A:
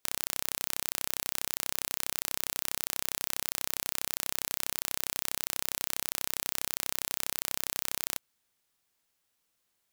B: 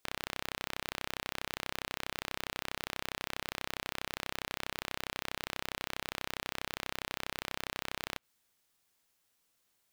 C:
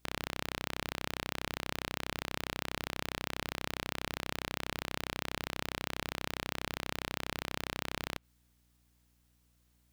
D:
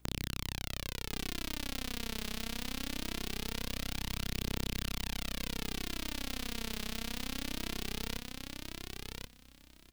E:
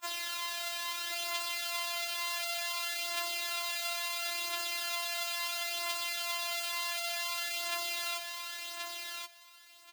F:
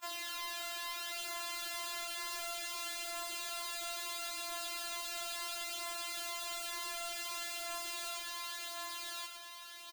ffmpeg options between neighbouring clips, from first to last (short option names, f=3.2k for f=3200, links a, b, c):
-filter_complex "[0:a]acrossover=split=4000[a][b];[b]acompressor=threshold=-42dB:ratio=4:attack=1:release=60[c];[a][c]amix=inputs=2:normalize=0,volume=1.5dB"
-af "lowshelf=f=330:g=8.5,aeval=exprs='val(0)+0.000316*(sin(2*PI*60*n/s)+sin(2*PI*2*60*n/s)/2+sin(2*PI*3*60*n/s)/3+sin(2*PI*4*60*n/s)/4+sin(2*PI*5*60*n/s)/5)':c=same"
-filter_complex "[0:a]acrossover=split=330|3000[a][b][c];[b]acompressor=threshold=-49dB:ratio=4[d];[a][d][c]amix=inputs=3:normalize=0,aphaser=in_gain=1:out_gain=1:delay=4.8:decay=0.53:speed=0.22:type=triangular,aecho=1:1:1079|2158|3237:0.631|0.101|0.0162,volume=1dB"
-af "highpass=f=910:t=q:w=1.8,afreqshift=-27,afftfilt=real='re*4*eq(mod(b,16),0)':imag='im*4*eq(mod(b,16),0)':win_size=2048:overlap=0.75,volume=8dB"
-af "asoftclip=type=tanh:threshold=-39dB,aecho=1:1:1185:0.398,volume=1dB"